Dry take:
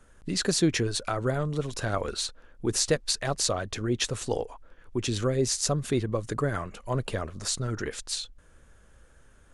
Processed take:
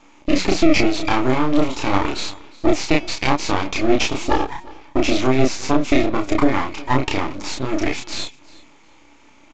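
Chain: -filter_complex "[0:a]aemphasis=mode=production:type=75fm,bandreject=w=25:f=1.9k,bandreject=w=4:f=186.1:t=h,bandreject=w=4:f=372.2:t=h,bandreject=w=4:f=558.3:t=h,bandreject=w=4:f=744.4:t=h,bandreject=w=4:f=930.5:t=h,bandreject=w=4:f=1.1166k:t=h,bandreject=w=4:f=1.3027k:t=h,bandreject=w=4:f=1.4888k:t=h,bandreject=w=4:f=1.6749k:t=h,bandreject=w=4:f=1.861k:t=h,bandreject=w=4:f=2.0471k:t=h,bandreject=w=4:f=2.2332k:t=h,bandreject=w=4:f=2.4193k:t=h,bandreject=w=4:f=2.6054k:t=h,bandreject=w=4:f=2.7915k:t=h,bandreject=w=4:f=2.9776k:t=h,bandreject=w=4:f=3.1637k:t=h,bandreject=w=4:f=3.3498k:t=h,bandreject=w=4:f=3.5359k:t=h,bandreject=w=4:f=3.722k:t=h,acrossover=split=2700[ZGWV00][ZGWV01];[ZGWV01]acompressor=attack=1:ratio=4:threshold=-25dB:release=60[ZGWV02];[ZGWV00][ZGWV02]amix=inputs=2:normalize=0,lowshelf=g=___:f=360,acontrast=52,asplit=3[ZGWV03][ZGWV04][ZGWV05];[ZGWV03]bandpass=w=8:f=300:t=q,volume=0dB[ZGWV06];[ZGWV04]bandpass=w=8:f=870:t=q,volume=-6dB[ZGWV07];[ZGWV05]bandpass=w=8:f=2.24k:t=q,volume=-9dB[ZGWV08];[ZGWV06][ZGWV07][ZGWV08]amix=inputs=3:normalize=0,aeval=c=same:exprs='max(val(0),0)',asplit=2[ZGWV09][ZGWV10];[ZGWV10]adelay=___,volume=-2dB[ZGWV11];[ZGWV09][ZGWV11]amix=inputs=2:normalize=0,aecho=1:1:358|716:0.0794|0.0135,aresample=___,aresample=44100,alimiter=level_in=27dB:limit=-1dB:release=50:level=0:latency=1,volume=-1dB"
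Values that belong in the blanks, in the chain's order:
-10.5, 31, 16000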